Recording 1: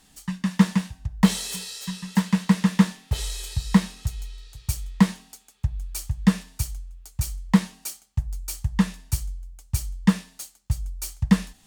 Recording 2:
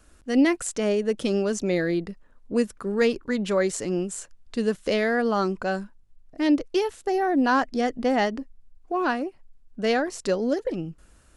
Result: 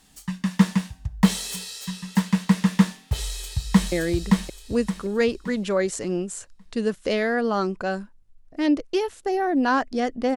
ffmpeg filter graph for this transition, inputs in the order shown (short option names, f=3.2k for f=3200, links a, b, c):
-filter_complex "[0:a]apad=whole_dur=10.36,atrim=end=10.36,atrim=end=3.922[a];[1:a]atrim=start=1.728:end=8.17[b];[a][b]acrossfade=d=0.004:c1=hsin:c2=hsin,asplit=2[c][d];[d]afade=t=in:st=3.18:d=0.01,afade=t=out:st=3.92:d=0.01,aecho=0:1:570|1140|1710|2280|2850:0.841395|0.294488|0.103071|0.0360748|0.0126262[e];[c][e]amix=inputs=2:normalize=0"